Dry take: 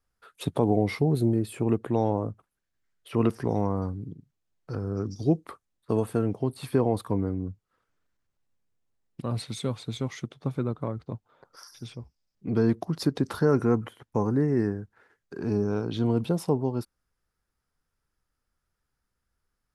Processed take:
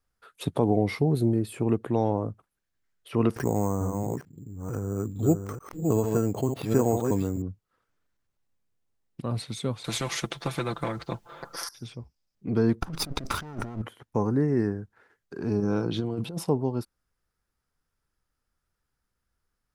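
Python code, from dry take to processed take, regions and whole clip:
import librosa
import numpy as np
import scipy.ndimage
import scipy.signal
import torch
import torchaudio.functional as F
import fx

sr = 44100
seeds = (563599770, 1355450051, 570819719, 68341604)

y = fx.chain(x, sr, fx.reverse_delay(ms=446, wet_db=-5.0),
    fx.resample_bad(factor=6, down='filtered', up='hold'),
    fx.pre_swell(db_per_s=140.0), at=(3.36, 7.42))
y = fx.chain(y, sr, fx.comb(ms=5.9, depth=0.73),
    fx.spectral_comp(ratio=2.0), at=(9.84, 11.69))
y = fx.chain(y, sr, fx.lower_of_two(delay_ms=0.82),
    fx.over_compress(threshold_db=-34.0, ratio=-1.0), at=(12.81, 13.82))
y = fx.chain(y, sr, fx.comb(ms=6.0, depth=0.36),
    fx.over_compress(threshold_db=-27.0, ratio=-0.5), at=(15.59, 16.44))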